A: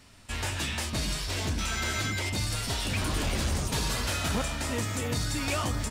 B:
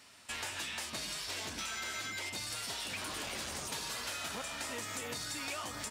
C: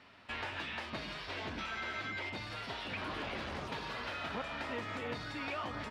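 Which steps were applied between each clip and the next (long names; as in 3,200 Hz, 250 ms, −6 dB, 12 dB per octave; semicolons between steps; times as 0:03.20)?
high-pass filter 670 Hz 6 dB per octave; downward compressor, threshold −37 dBFS, peak gain reduction 9 dB
high-frequency loss of the air 350 metres; level +4.5 dB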